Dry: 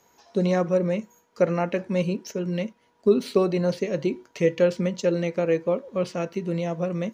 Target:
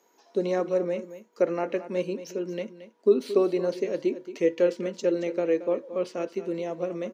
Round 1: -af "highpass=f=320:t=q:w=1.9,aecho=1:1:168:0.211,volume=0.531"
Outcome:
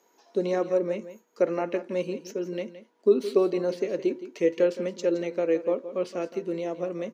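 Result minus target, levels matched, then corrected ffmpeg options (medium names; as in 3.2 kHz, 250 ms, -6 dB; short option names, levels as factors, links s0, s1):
echo 57 ms early
-af "highpass=f=320:t=q:w=1.9,aecho=1:1:225:0.211,volume=0.531"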